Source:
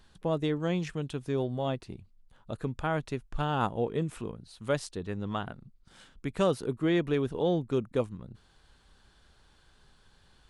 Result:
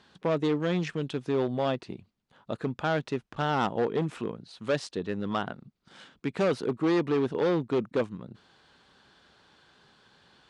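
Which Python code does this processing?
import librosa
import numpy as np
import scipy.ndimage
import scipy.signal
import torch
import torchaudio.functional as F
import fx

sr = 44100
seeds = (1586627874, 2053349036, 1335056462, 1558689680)

y = np.clip(x, -10.0 ** (-26.5 / 20.0), 10.0 ** (-26.5 / 20.0))
y = fx.bandpass_edges(y, sr, low_hz=170.0, high_hz=5300.0)
y = F.gain(torch.from_numpy(y), 5.5).numpy()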